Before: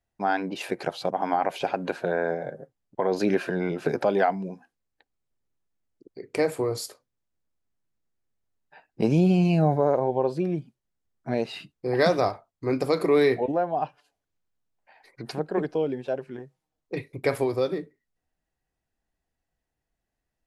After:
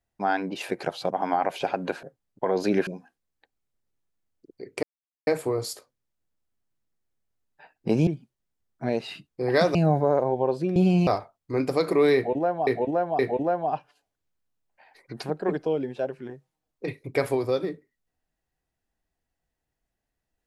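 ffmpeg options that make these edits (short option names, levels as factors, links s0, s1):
-filter_complex "[0:a]asplit=10[s0][s1][s2][s3][s4][s5][s6][s7][s8][s9];[s0]atrim=end=2.032[s10];[s1]atrim=start=2.588:end=3.432[s11];[s2]atrim=start=4.438:end=6.4,asetpts=PTS-STARTPTS,afade=t=out:st=1.958:d=0.004:c=hsin,apad=pad_dur=0.44[s12];[s3]atrim=start=6.4:end=9.202,asetpts=PTS-STARTPTS,afade=t=in:d=0.004:c=hsin[s13];[s4]atrim=start=10.518:end=12.202[s14];[s5]atrim=start=9.508:end=10.522[s15];[s6]atrim=start=9.198:end=9.512[s16];[s7]atrim=start=12.198:end=13.802[s17];[s8]atrim=start=13.278:end=13.802[s18];[s9]atrim=start=13.278[s19];[s10][s11]acrossfade=d=0.004:c1=hsin:c2=hsin[s20];[s12][s13]concat=n=2:v=0:a=1[s21];[s20][s21]acrossfade=d=0.004:c1=hsin:c2=hsin[s22];[s22][s14]acrossfade=d=0.004:c1=hsin:c2=hsin[s23];[s23][s15]acrossfade=d=0.004:c1=hsin:c2=hsin[s24];[s24][s16]acrossfade=d=0.004:c1=hsin:c2=hsin[s25];[s25][s17]acrossfade=d=0.004:c1=hsin:c2=hsin[s26];[s26][s18]acrossfade=d=0.004:c1=hsin:c2=hsin[s27];[s27][s19]acrossfade=d=0.004:c1=hsin:c2=hsin"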